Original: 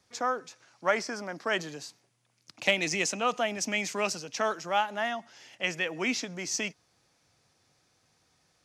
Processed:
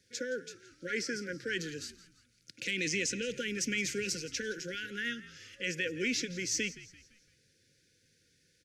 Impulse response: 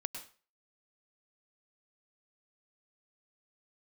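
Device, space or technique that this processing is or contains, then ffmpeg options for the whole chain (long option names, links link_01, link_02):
soft clipper into limiter: -filter_complex "[0:a]asettb=1/sr,asplit=3[link_01][link_02][link_03];[link_01]atrim=end=2.644[link_04];[link_02]atrim=start=2.64:end=3.27,asetpts=PTS-STARTPTS,afade=type=in:duration=0.004:curve=qsin,afade=type=out:start_time=0.626:duration=0.004:curve=qsin,lowpass=9800[link_05];[link_03]atrim=start=3.266[link_06];[link_04][link_05]acrossfade=duration=0.004:curve1=hsin:curve2=qsin[link_07];[link_07][link_06]acrossfade=duration=0.004:curve1=qsin:curve2=hsin,asoftclip=type=tanh:threshold=-13.5dB,alimiter=limit=-23dB:level=0:latency=1:release=40,afftfilt=real='re*(1-between(b*sr/4096,550,1400))':imag='im*(1-between(b*sr/4096,550,1400))':win_size=4096:overlap=0.75,asplit=5[link_08][link_09][link_10][link_11][link_12];[link_09]adelay=169,afreqshift=-67,volume=-17dB[link_13];[link_10]adelay=338,afreqshift=-134,volume=-24.3dB[link_14];[link_11]adelay=507,afreqshift=-201,volume=-31.7dB[link_15];[link_12]adelay=676,afreqshift=-268,volume=-39dB[link_16];[link_08][link_13][link_14][link_15][link_16]amix=inputs=5:normalize=0"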